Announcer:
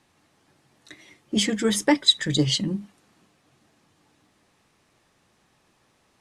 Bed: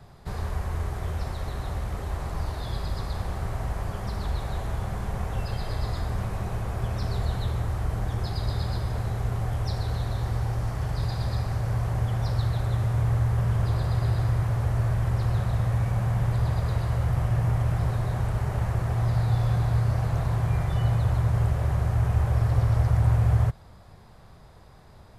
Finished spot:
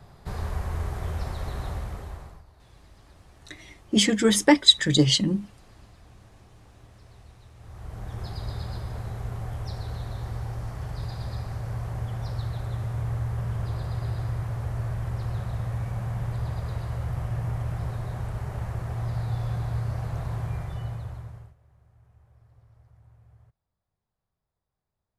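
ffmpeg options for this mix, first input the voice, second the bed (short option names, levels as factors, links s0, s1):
-filter_complex "[0:a]adelay=2600,volume=1.33[s0];[1:a]volume=7.5,afade=t=out:st=1.65:d=0.78:silence=0.0707946,afade=t=in:st=7.57:d=0.69:silence=0.125893,afade=t=out:st=20.4:d=1.15:silence=0.0334965[s1];[s0][s1]amix=inputs=2:normalize=0"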